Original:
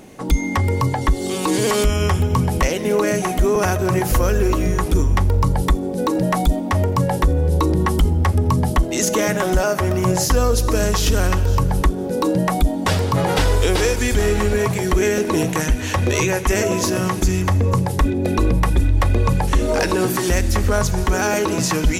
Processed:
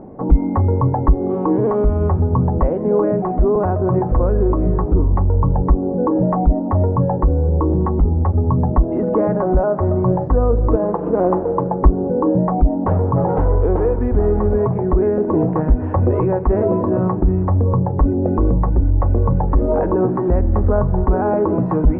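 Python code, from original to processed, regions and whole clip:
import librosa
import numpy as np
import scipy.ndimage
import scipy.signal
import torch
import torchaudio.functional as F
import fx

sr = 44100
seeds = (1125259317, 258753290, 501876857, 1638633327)

y = fx.chain(x, sr, fx.median_filter(points=25),
    fx.highpass(hz=310.0, slope=12),
    fx.comb(ms=5.9, depth=0.54), at=(10.76, 11.83))
y = scipy.signal.sosfilt(scipy.signal.butter(4, 1000.0, 'lowpass', fs=sr, output='sos'), y)
y = fx.rider(y, sr, range_db=10, speed_s=0.5)
y = y * 10.0 ** (2.5 / 20.0)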